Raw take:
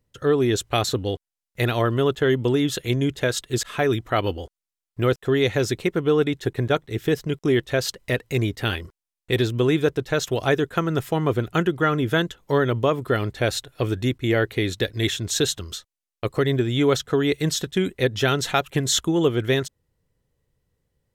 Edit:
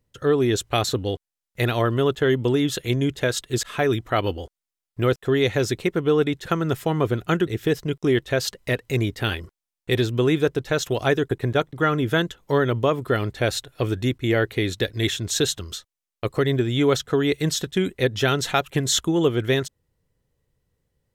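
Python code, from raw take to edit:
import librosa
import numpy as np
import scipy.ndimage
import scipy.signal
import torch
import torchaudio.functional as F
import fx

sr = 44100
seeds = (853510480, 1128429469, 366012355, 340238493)

y = fx.edit(x, sr, fx.swap(start_s=6.46, length_s=0.42, other_s=10.72, other_length_s=1.01), tone=tone)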